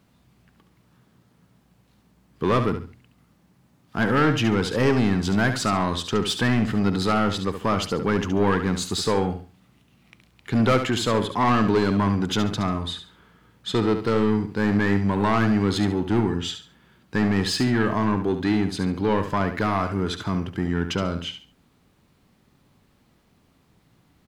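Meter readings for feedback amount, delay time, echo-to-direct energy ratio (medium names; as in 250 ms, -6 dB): 27%, 70 ms, -8.5 dB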